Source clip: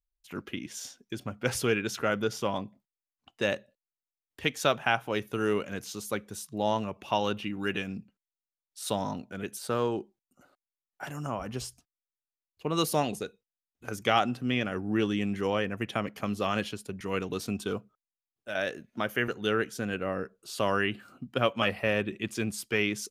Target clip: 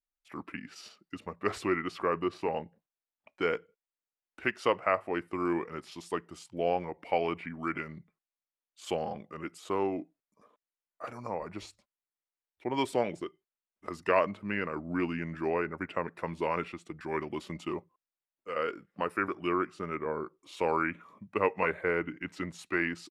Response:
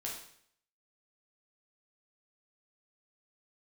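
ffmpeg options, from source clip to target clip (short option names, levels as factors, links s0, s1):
-af "bass=f=250:g=-13,treble=f=4000:g=-11,asetrate=36028,aresample=44100,atempo=1.22405,adynamicequalizer=threshold=0.00447:dfrequency=2700:dqfactor=0.7:tfrequency=2700:tqfactor=0.7:attack=5:release=100:ratio=0.375:range=3:mode=cutabove:tftype=highshelf"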